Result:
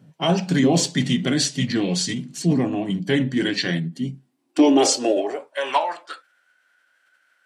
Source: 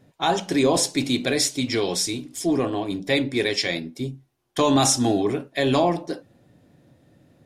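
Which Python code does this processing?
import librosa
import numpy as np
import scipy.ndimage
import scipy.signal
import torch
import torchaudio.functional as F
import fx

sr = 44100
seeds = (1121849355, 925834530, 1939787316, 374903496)

y = fx.filter_sweep_highpass(x, sr, from_hz=160.0, to_hz=1800.0, start_s=3.94, end_s=6.22, q=4.2)
y = fx.formant_shift(y, sr, semitones=-3)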